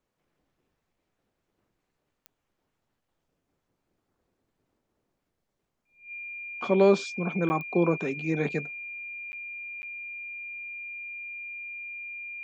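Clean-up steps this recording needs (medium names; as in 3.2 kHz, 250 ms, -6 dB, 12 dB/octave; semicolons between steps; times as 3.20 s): de-click; band-stop 2.4 kHz, Q 30; interpolate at 7.49/9.32/9.82 s, 10 ms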